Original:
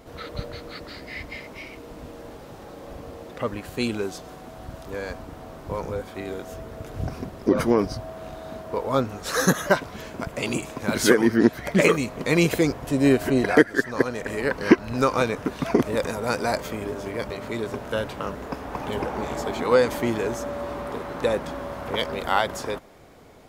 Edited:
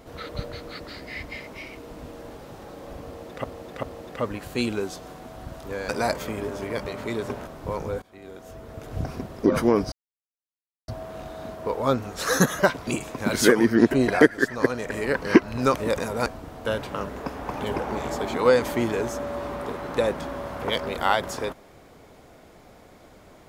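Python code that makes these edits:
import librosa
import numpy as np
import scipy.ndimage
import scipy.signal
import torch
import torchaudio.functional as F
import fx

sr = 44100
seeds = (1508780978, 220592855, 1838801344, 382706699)

y = fx.edit(x, sr, fx.repeat(start_s=3.05, length_s=0.39, count=3),
    fx.swap(start_s=5.11, length_s=0.39, other_s=16.33, other_length_s=1.58),
    fx.fade_in_from(start_s=6.05, length_s=0.99, floor_db=-21.5),
    fx.insert_silence(at_s=7.95, length_s=0.96),
    fx.cut(start_s=9.94, length_s=0.55),
    fx.cut(start_s=11.53, length_s=1.74),
    fx.cut(start_s=15.1, length_s=0.71), tone=tone)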